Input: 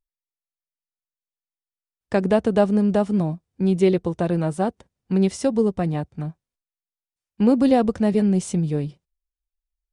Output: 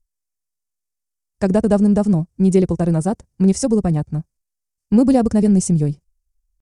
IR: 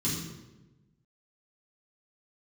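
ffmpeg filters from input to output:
-af "aemphasis=mode=reproduction:type=bsi,atempo=1.5,aexciter=amount=10.4:drive=4.7:freq=5200"

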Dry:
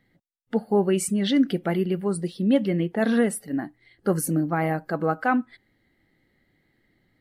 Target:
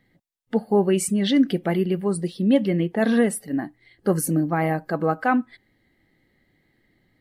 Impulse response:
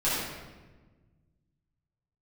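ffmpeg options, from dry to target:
-af "bandreject=f=1400:w=11,volume=1.26"

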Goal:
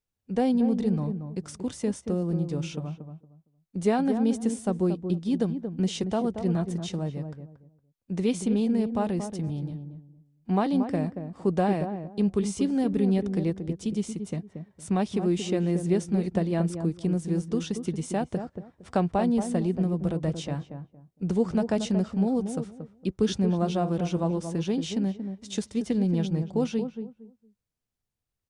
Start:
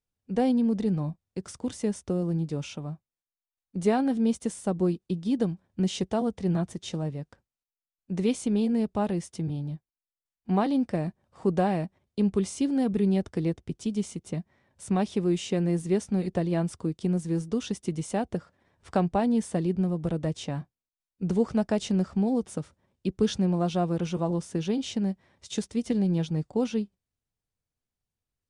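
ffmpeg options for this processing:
-filter_complex "[0:a]asplit=2[s0][s1];[s1]adelay=230,lowpass=f=840:p=1,volume=0.447,asplit=2[s2][s3];[s3]adelay=230,lowpass=f=840:p=1,volume=0.24,asplit=2[s4][s5];[s5]adelay=230,lowpass=f=840:p=1,volume=0.24[s6];[s0][s2][s4][s6]amix=inputs=4:normalize=0"

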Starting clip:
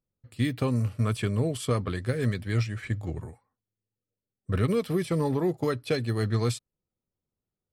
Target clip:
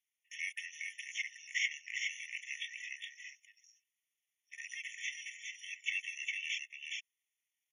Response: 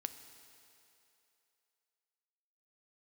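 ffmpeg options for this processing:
-filter_complex "[0:a]acompressor=threshold=0.0316:ratio=2.5,highpass=f=1700:t=q:w=12,aecho=1:1:409:0.631,asetrate=28595,aresample=44100,atempo=1.54221,acrossover=split=4800[s0][s1];[s1]acompressor=threshold=0.00126:ratio=4:attack=1:release=60[s2];[s0][s2]amix=inputs=2:normalize=0,afftfilt=real='re*eq(mod(floor(b*sr/1024/1800),2),1)':imag='im*eq(mod(floor(b*sr/1024/1800),2),1)':win_size=1024:overlap=0.75,volume=2.51"

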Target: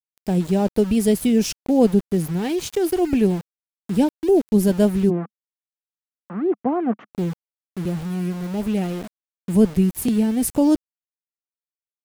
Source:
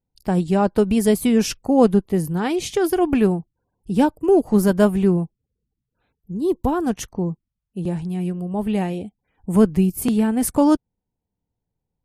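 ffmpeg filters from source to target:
-filter_complex "[0:a]equalizer=f=1200:t=o:w=1:g=-13.5,aeval=exprs='val(0)*gte(abs(val(0)),0.0251)':c=same,asplit=3[s0][s1][s2];[s0]afade=t=out:st=5.09:d=0.02[s3];[s1]highpass=f=200:w=0.5412,highpass=f=200:w=1.3066,equalizer=f=210:t=q:w=4:g=3,equalizer=f=710:t=q:w=4:g=6,equalizer=f=1200:t=q:w=4:g=10,lowpass=f=2000:w=0.5412,lowpass=f=2000:w=1.3066,afade=t=in:st=5.09:d=0.02,afade=t=out:st=7.12:d=0.02[s4];[s2]afade=t=in:st=7.12:d=0.02[s5];[s3][s4][s5]amix=inputs=3:normalize=0"

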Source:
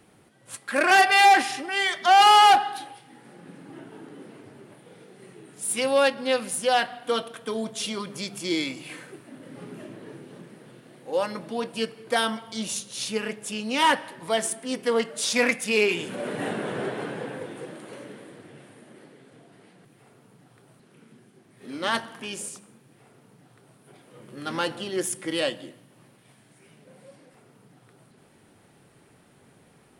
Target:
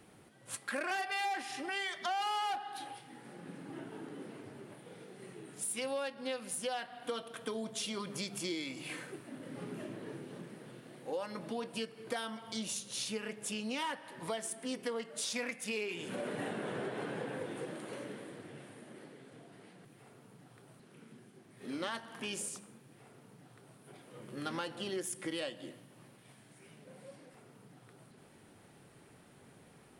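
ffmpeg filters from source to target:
-af "acompressor=threshold=0.0224:ratio=6,volume=0.75"

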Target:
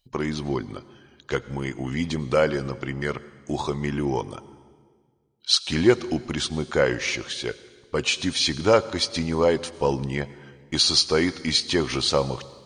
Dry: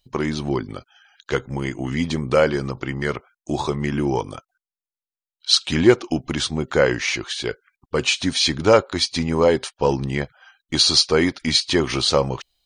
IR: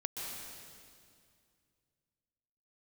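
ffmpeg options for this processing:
-filter_complex "[0:a]asplit=2[s0][s1];[1:a]atrim=start_sample=2205,asetrate=61740,aresample=44100,highshelf=f=5600:g=5[s2];[s1][s2]afir=irnorm=-1:irlink=0,volume=0.2[s3];[s0][s3]amix=inputs=2:normalize=0,volume=0.596"

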